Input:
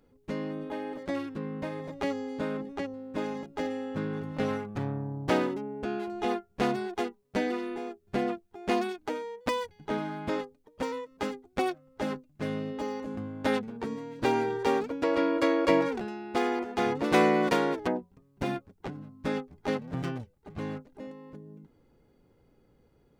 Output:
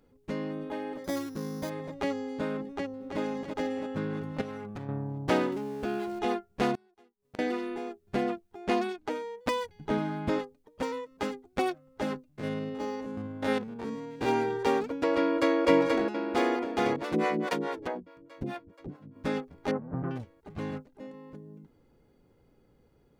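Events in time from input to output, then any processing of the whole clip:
1.04–1.7 careless resampling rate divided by 8×, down filtered, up hold
2.67–3.2 echo throw 0.33 s, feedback 55%, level -5.5 dB
4.41–4.89 compressor, threshold -35 dBFS
5.52–6.19 zero-crossing step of -45 dBFS
6.75–7.39 flipped gate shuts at -36 dBFS, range -30 dB
8.64–9.11 high shelf 9500 Hz -8 dB
9.74–10.39 low shelf 260 Hz +7 dB
12.28–14.29 stepped spectrum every 50 ms
15.18–15.6 echo throw 0.48 s, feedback 65%, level -3 dB
16.96–19.16 harmonic tremolo 4.7 Hz, depth 100%, crossover 430 Hz
19.71–20.11 LPF 1400 Hz 24 dB/oct
20.71–21.14 three-band expander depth 70%

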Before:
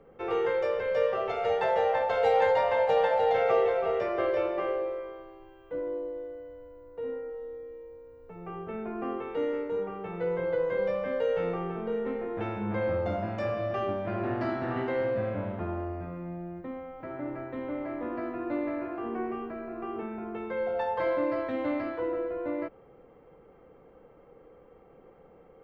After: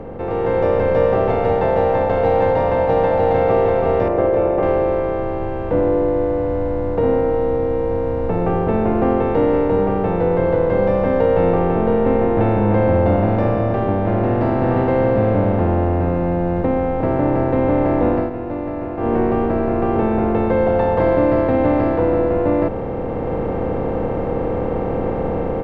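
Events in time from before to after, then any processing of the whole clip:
4.08–4.63 formant sharpening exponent 1.5
11.21–14.23 LPF 3900 Hz
18.08–19.19 dip -23 dB, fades 0.22 s
whole clip: per-bin compression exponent 0.4; tilt -3.5 dB/oct; AGC gain up to 11.5 dB; gain -3.5 dB

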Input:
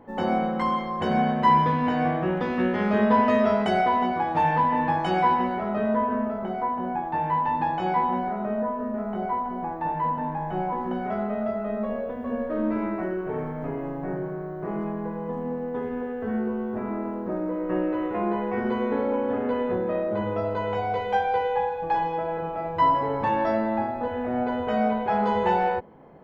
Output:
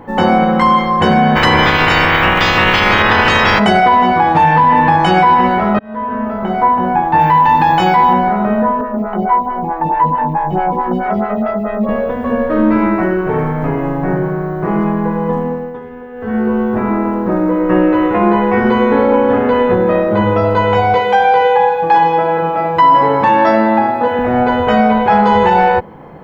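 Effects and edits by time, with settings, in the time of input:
1.35–3.58 spectral limiter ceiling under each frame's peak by 28 dB
5.79–6.64 fade in
7.19–8.13 high shelf 3900 Hz +12 dB
8.81–11.89 photocell phaser 4.6 Hz
15.34–16.56 dip -14 dB, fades 0.45 s
20.94–24.19 HPF 170 Hz
whole clip: thirty-one-band EQ 250 Hz -5 dB, 400 Hz -5 dB, 630 Hz -6 dB; maximiser +18 dB; gain -1 dB

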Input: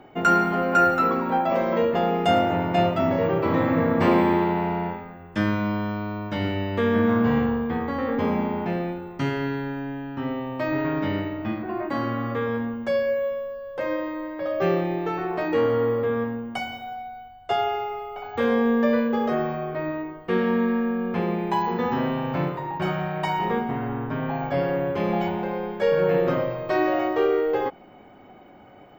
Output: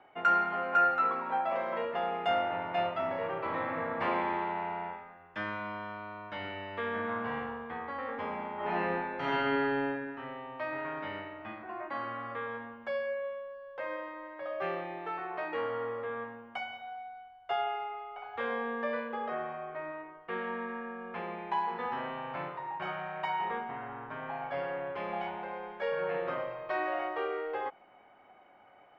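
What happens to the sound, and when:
8.55–9.86 reverb throw, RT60 1.6 s, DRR -8.5 dB
19.14–21.14 air absorption 110 m
whole clip: three-band isolator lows -16 dB, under 600 Hz, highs -20 dB, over 3400 Hz; gain -5.5 dB

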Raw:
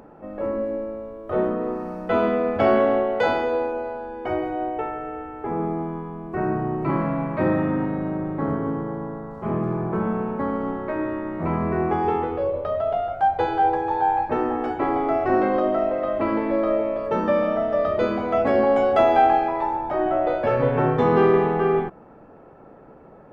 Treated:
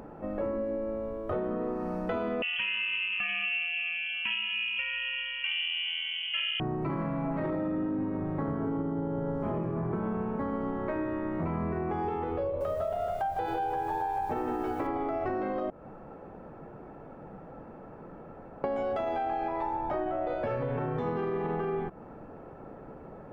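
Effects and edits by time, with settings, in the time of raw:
2.42–6.6 inverted band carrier 3200 Hz
7.21–7.89 reverb throw, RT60 0.99 s, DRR -6 dB
8.55–9.54 reverb throw, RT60 2.5 s, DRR -4 dB
12.45–14.87 lo-fi delay 0.157 s, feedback 35%, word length 8-bit, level -4.5 dB
15.7–18.64 room tone
whole clip: low shelf 160 Hz +5.5 dB; limiter -14.5 dBFS; compressor, threshold -29 dBFS

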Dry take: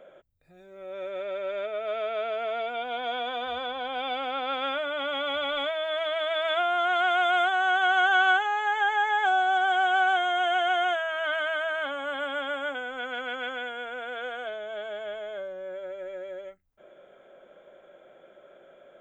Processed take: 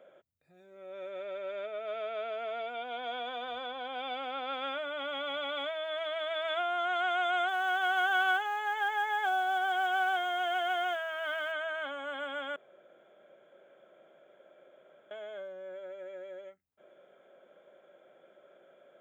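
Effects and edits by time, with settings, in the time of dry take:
7.48–11.52 short-mantissa float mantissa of 4-bit
12.56–15.11 room tone
whole clip: HPF 120 Hz 12 dB/oct; gain -6.5 dB

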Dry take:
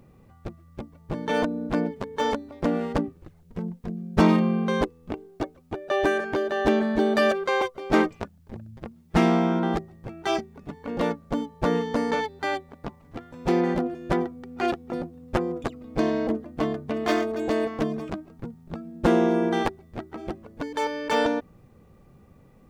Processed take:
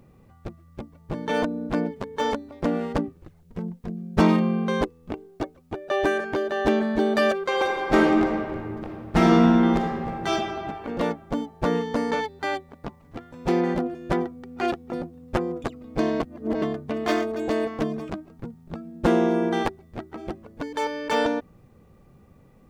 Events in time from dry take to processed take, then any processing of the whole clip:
7.45–10.32 reverb throw, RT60 2.2 s, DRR -1 dB
16.2–16.62 reverse

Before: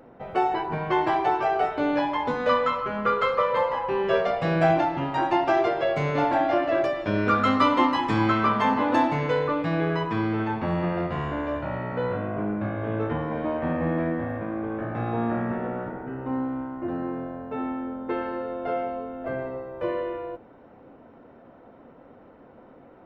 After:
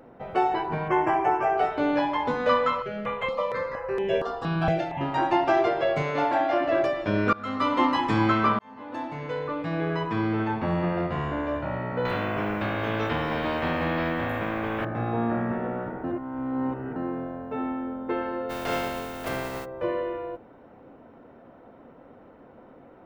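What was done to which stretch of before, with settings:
0.88–1.58 Butterworth band-stop 4000 Hz, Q 1.3
2.82–5.01 step phaser 4.3 Hz 270–4500 Hz
6.02–6.61 low shelf 210 Hz -11 dB
7.33–7.92 fade in, from -23.5 dB
8.59–10.31 fade in
12.05–14.85 spectral compressor 2:1
16.04–16.96 reverse
18.49–19.64 spectral contrast lowered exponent 0.44

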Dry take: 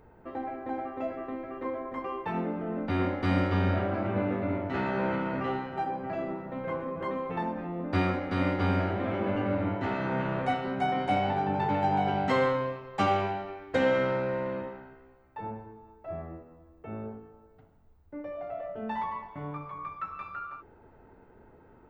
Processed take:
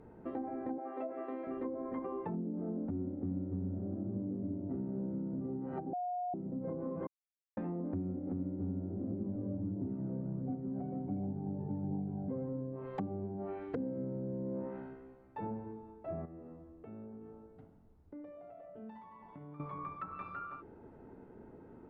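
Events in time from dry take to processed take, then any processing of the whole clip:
0.78–1.47 HPF 430 Hz
5.93–6.34 bleep 718 Hz -13.5 dBFS
7.07–7.57 mute
9.1–12.49 phaser 1.4 Hz, delay 2 ms, feedback 39%
16.25–19.6 compressor 12:1, threshold -48 dBFS
whole clip: treble ducked by the level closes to 320 Hz, closed at -27.5 dBFS; bell 240 Hz +12 dB 2.6 oct; compressor 4:1, threshold -30 dBFS; gain -6.5 dB

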